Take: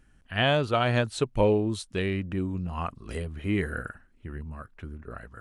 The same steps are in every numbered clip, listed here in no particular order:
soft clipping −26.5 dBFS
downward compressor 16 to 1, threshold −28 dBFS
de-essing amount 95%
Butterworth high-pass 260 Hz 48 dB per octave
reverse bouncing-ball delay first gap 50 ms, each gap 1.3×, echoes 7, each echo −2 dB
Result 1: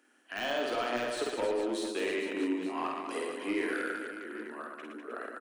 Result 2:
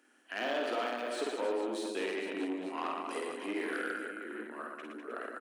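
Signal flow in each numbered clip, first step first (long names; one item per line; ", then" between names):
Butterworth high-pass, then downward compressor, then soft clipping, then de-essing, then reverse bouncing-ball delay
de-essing, then downward compressor, then reverse bouncing-ball delay, then soft clipping, then Butterworth high-pass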